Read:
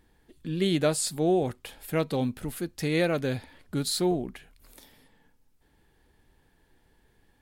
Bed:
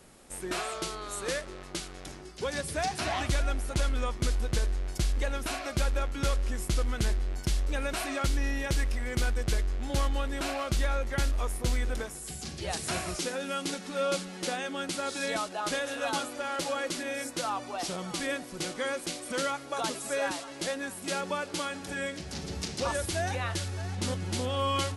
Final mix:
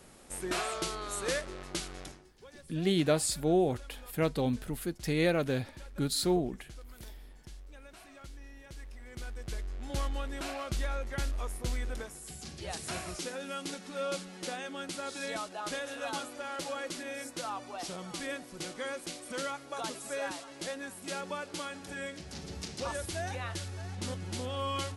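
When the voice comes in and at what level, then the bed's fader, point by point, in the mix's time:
2.25 s, -2.5 dB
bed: 2.02 s 0 dB
2.37 s -20.5 dB
8.63 s -20.5 dB
9.96 s -5.5 dB

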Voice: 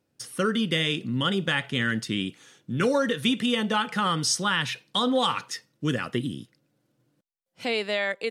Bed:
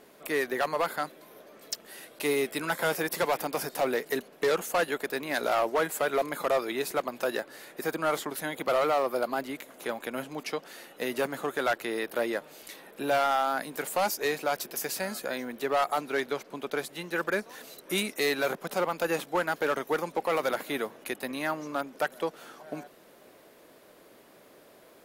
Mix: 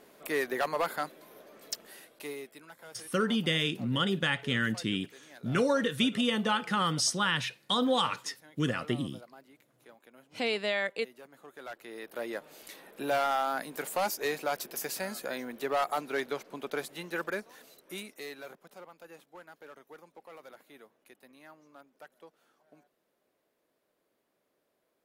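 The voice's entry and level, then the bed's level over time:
2.75 s, -3.5 dB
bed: 1.83 s -2 dB
2.74 s -22.5 dB
11.27 s -22.5 dB
12.54 s -3 dB
17.06 s -3 dB
18.96 s -22.5 dB

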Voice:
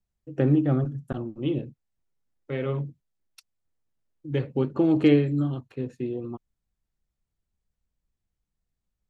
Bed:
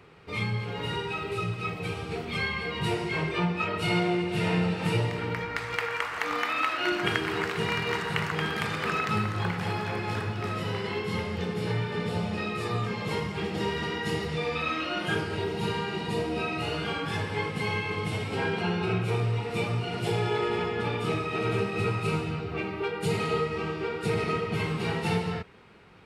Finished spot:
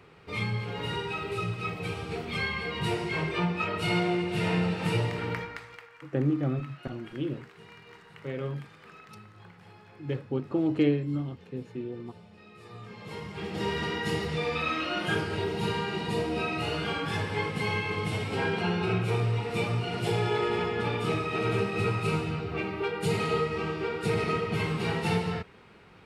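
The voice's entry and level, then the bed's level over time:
5.75 s, -5.5 dB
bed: 5.36 s -1 dB
5.9 s -22 dB
12.39 s -22 dB
13.72 s 0 dB

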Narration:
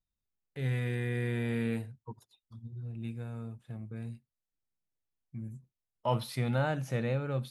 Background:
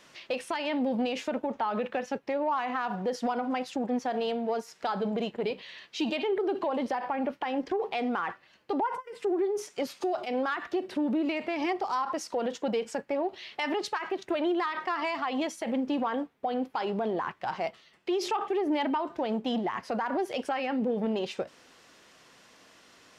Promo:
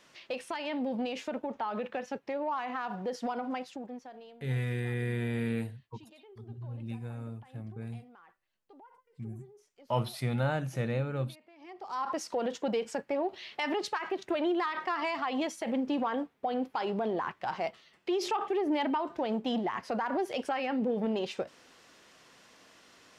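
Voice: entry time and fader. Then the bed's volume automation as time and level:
3.85 s, 0.0 dB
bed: 3.54 s -4.5 dB
4.5 s -26.5 dB
11.55 s -26.5 dB
12.05 s -1.5 dB

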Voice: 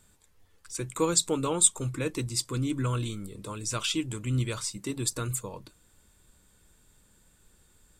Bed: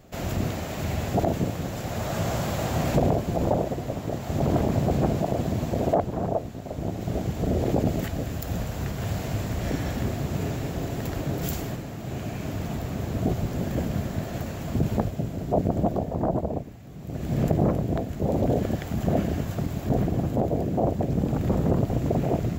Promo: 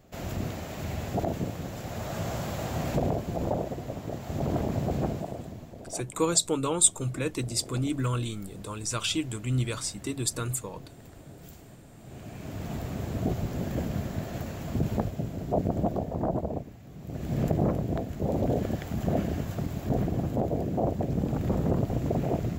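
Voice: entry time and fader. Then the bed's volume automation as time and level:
5.20 s, +0.5 dB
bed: 5.04 s -5.5 dB
5.76 s -19 dB
11.64 s -19 dB
12.75 s -3.5 dB

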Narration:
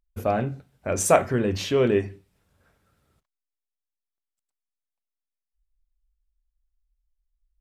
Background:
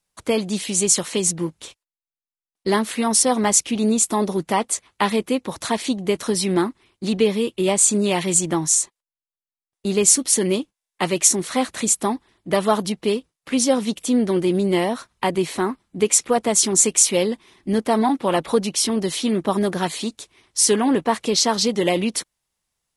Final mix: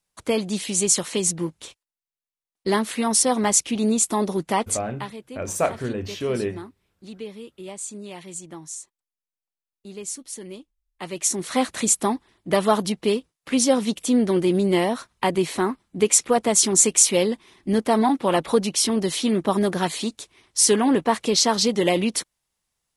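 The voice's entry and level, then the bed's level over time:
4.50 s, -4.5 dB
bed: 4.75 s -2 dB
5.13 s -17.5 dB
10.8 s -17.5 dB
11.57 s -0.5 dB

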